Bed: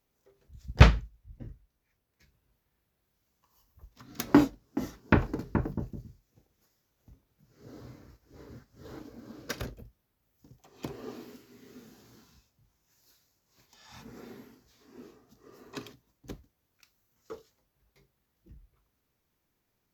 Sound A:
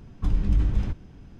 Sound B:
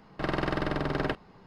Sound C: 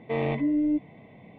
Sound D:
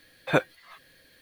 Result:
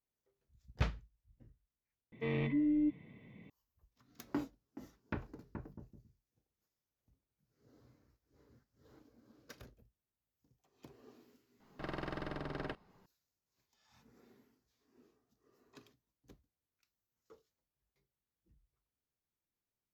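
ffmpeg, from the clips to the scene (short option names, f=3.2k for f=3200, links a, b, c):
-filter_complex "[0:a]volume=-18dB[a];[3:a]equalizer=f=720:t=o:w=0.87:g=-15,atrim=end=1.38,asetpts=PTS-STARTPTS,volume=-5dB,afade=t=in:d=0.004:c=hsin,afade=t=out:st=1.376:d=0.004:c=hsin,adelay=2120[b];[2:a]atrim=end=1.46,asetpts=PTS-STARTPTS,volume=-12.5dB,afade=t=in:d=0.004:c=hsin,afade=t=out:st=1.456:d=0.004:c=hsin,adelay=11600[c];[a][b][c]amix=inputs=3:normalize=0"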